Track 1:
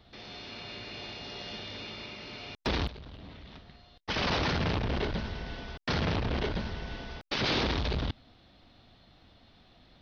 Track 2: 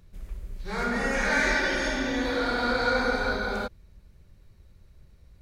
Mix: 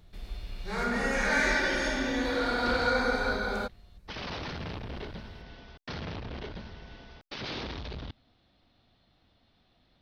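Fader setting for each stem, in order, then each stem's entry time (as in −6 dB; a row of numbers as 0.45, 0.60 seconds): −8.5, −2.0 decibels; 0.00, 0.00 seconds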